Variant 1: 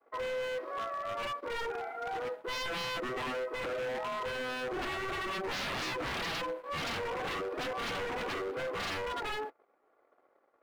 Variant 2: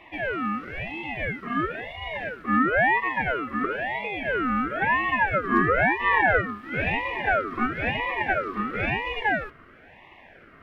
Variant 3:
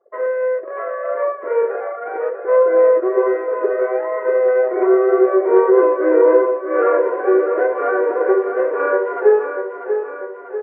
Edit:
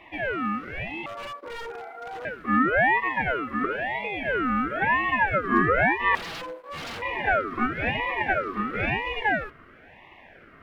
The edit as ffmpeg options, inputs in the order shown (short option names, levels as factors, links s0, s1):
-filter_complex "[0:a]asplit=2[s0][s1];[1:a]asplit=3[s2][s3][s4];[s2]atrim=end=1.062[s5];[s0]atrim=start=1.058:end=2.252[s6];[s3]atrim=start=2.248:end=6.152[s7];[s1]atrim=start=6.148:end=7.022[s8];[s4]atrim=start=7.018[s9];[s5][s6]acrossfade=d=0.004:c1=hsin:c2=hsin[s10];[s10][s7]acrossfade=d=0.004:c1=hsin:c2=hsin[s11];[s11][s8]acrossfade=d=0.004:c1=hsin:c2=hsin[s12];[s12][s9]acrossfade=d=0.004:c1=hsin:c2=hsin"